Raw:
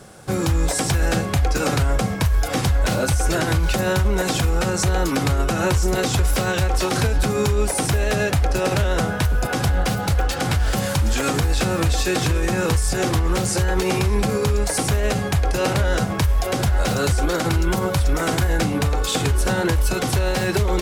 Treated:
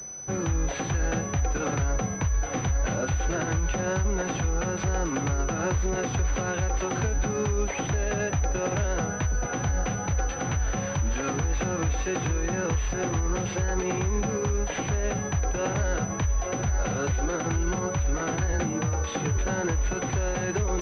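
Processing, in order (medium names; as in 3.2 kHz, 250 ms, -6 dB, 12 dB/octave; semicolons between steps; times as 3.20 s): wow and flutter 27 cents; 18.52–19.37 s: frequency shift +27 Hz; class-D stage that switches slowly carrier 6 kHz; trim -7 dB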